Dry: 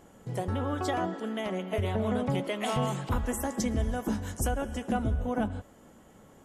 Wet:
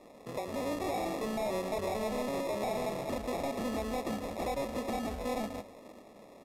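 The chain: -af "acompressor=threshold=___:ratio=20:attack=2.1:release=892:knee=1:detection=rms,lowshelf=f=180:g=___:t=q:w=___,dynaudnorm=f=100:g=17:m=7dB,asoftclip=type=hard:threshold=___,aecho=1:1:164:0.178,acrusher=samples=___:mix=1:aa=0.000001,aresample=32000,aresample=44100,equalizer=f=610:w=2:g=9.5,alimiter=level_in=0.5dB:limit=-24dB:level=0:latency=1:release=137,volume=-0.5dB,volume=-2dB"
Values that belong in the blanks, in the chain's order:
-29dB, -10.5, 1.5, -31.5dB, 29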